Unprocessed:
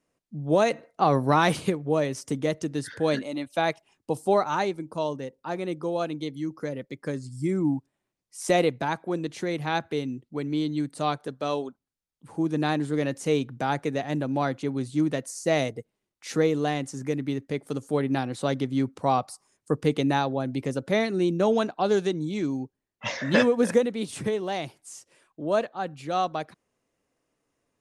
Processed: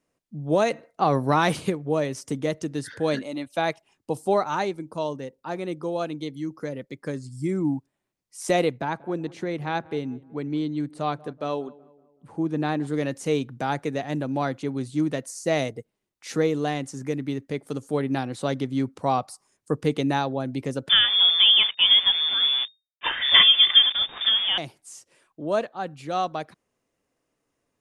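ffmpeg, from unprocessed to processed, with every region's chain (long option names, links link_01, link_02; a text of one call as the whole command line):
ffmpeg -i in.wav -filter_complex "[0:a]asettb=1/sr,asplit=3[link_01][link_02][link_03];[link_01]atrim=end=8.774[link_04];[link_02]atrim=start=8.77:end=12.87,asetpts=PTS-STARTPTS,afade=type=in:duration=0.004:curve=qsin,afade=type=out:start_time=4.096:duration=0.004:curve=qsin,highshelf=frequency=4100:gain=-10.5,asplit=2[link_05][link_06];[link_06]adelay=187,lowpass=frequency=1400:poles=1,volume=-21dB,asplit=2[link_07][link_08];[link_08]adelay=187,lowpass=frequency=1400:poles=1,volume=0.49,asplit=2[link_09][link_10];[link_10]adelay=187,lowpass=frequency=1400:poles=1,volume=0.49,asplit=2[link_11][link_12];[link_12]adelay=187,lowpass=frequency=1400:poles=1,volume=0.49[link_13];[link_05][link_07][link_09][link_11][link_13]amix=inputs=5:normalize=0,atrim=end_sample=180810[link_14];[link_03]atrim=start=12.866[link_15];[link_04][link_14]acrossfade=duration=0.004:curve1=hsin:curve2=qsin[link_16];[link_16][link_15]acrossfade=duration=0.004:curve1=qsin:curve2=hsin,asettb=1/sr,asplit=3[link_17][link_18][link_19];[link_17]atrim=end=20.894[link_20];[link_18]atrim=start=20.89:end=24.58,asetpts=PTS-STARTPTS,afade=type=in:duration=0.004:curve=qsin,afade=type=out:start_time=3.686:duration=0.004:curve=qsin,acontrast=38,acrusher=bits=6:dc=4:mix=0:aa=0.000001,lowpass=frequency=3100:width_type=q:width=0.5098,lowpass=frequency=3100:width_type=q:width=0.6013,lowpass=frequency=3100:width_type=q:width=0.9,lowpass=frequency=3100:width_type=q:width=2.563,afreqshift=-3700[link_21];[link_19]atrim=start=24.576[link_22];[link_20][link_21]acrossfade=duration=0.004:curve1=hsin:curve2=qsin[link_23];[link_23][link_22]acrossfade=duration=0.004:curve1=qsin:curve2=hsin" out.wav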